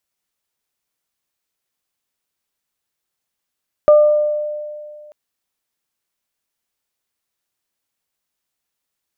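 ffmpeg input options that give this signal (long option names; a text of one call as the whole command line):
ffmpeg -f lavfi -i "aevalsrc='0.596*pow(10,-3*t/2.17)*sin(2*PI*599*t)+0.119*pow(10,-3*t/0.75)*sin(2*PI*1198*t)':duration=1.24:sample_rate=44100" out.wav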